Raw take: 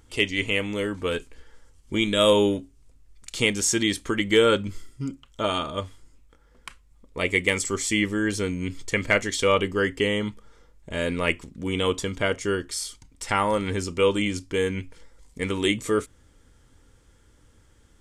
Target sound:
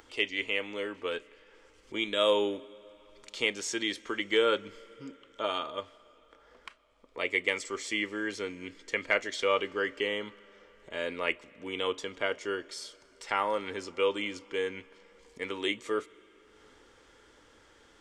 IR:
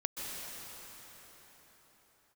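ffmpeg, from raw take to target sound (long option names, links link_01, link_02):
-filter_complex "[0:a]acrossover=split=310 5800:gain=0.112 1 0.158[link_01][link_02][link_03];[link_01][link_02][link_03]amix=inputs=3:normalize=0,acompressor=mode=upward:threshold=-42dB:ratio=2.5,asplit=2[link_04][link_05];[1:a]atrim=start_sample=2205,asetrate=48510,aresample=44100[link_06];[link_05][link_06]afir=irnorm=-1:irlink=0,volume=-23.5dB[link_07];[link_04][link_07]amix=inputs=2:normalize=0,volume=-6dB"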